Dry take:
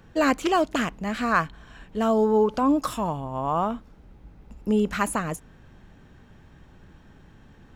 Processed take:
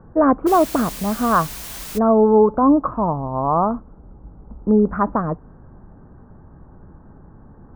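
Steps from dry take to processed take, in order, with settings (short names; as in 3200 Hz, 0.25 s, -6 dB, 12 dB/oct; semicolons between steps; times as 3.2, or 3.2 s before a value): steep low-pass 1300 Hz 36 dB/oct; 0.46–1.97 added noise white -41 dBFS; gain +7 dB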